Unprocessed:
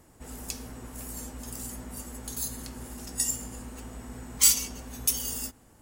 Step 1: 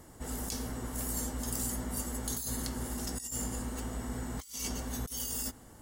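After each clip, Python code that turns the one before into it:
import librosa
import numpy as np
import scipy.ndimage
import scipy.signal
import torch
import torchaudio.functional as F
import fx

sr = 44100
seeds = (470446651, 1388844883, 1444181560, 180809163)

y = fx.notch(x, sr, hz=2500.0, q=6.6)
y = fx.over_compress(y, sr, threshold_db=-37.0, ratio=-1.0)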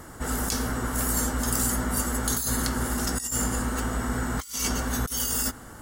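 y = fx.peak_eq(x, sr, hz=1400.0, db=9.5, octaves=0.68)
y = F.gain(torch.from_numpy(y), 9.0).numpy()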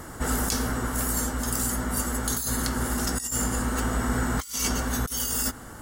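y = fx.rider(x, sr, range_db=10, speed_s=0.5)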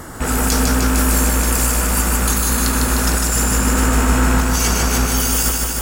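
y = fx.rattle_buzz(x, sr, strikes_db=-33.0, level_db=-29.0)
y = fx.echo_crushed(y, sr, ms=152, feedback_pct=80, bits=8, wet_db=-3.0)
y = F.gain(torch.from_numpy(y), 7.0).numpy()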